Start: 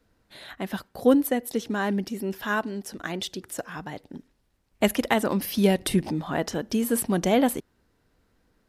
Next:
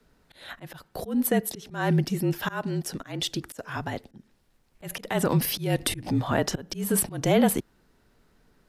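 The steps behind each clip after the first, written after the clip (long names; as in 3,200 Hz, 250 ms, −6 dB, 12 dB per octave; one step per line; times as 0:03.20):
brickwall limiter −17 dBFS, peak gain reduction 10 dB
volume swells 230 ms
frequency shifter −39 Hz
level +4.5 dB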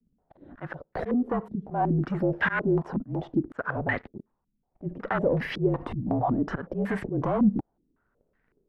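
downward compressor, threshold −25 dBFS, peak gain reduction 9.5 dB
leveller curve on the samples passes 3
low-pass on a step sequencer 5.4 Hz 220–1,900 Hz
level −7 dB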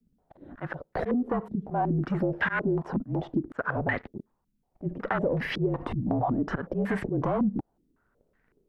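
downward compressor 5 to 1, threshold −25 dBFS, peak gain reduction 8.5 dB
level +2 dB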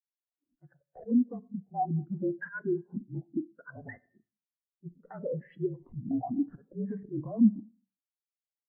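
on a send at −8 dB: convolution reverb, pre-delay 3 ms
on the sum: every bin expanded away from the loudest bin 2.5 to 1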